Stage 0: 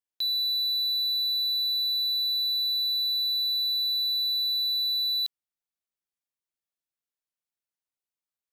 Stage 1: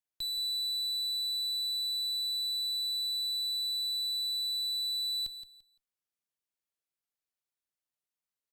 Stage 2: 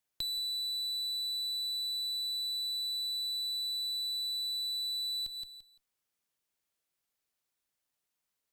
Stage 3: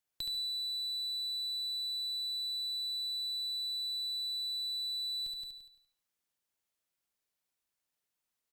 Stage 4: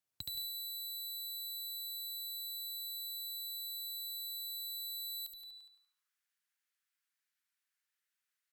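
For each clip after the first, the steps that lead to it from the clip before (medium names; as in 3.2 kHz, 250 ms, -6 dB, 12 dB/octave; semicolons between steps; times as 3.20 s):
valve stage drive 33 dB, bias 0.5; on a send: feedback delay 171 ms, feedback 23%, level -11 dB
compression, threshold -42 dBFS, peak gain reduction 9.5 dB; trim +7 dB
feedback delay 72 ms, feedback 33%, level -6 dB; trim -3 dB
high-pass sweep 90 Hz -> 1.6 kHz, 2.91–6.24 s; Chebyshev shaper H 5 -26 dB, 7 -10 dB, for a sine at -25.5 dBFS; trim -2.5 dB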